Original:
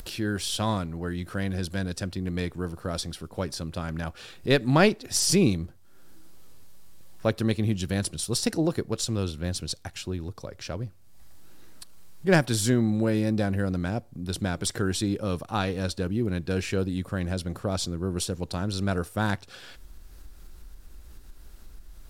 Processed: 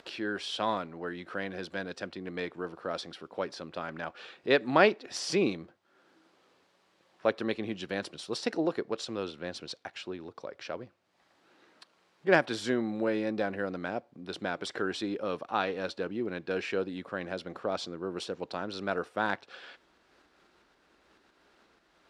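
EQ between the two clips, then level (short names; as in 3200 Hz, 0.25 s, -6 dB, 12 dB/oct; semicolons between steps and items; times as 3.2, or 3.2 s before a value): BPF 370–3100 Hz; 0.0 dB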